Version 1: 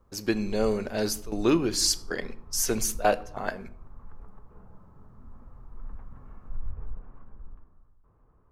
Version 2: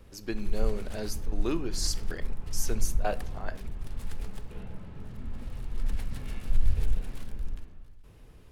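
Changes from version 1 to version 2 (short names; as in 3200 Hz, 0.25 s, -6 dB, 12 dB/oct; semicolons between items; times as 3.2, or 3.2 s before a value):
speech -8.5 dB; background: remove ladder low-pass 1300 Hz, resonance 60%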